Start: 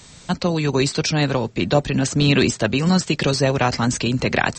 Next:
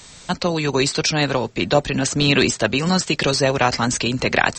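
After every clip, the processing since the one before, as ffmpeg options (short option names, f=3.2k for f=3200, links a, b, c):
-af "equalizer=f=130:t=o:w=2.8:g=-6.5,volume=3dB"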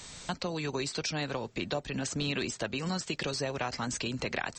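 -af "acompressor=threshold=-30dB:ratio=3,volume=-4dB"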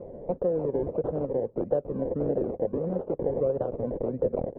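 -af "acrusher=samples=27:mix=1:aa=0.000001:lfo=1:lforange=16.2:lforate=1.6,lowpass=f=510:t=q:w=5.4"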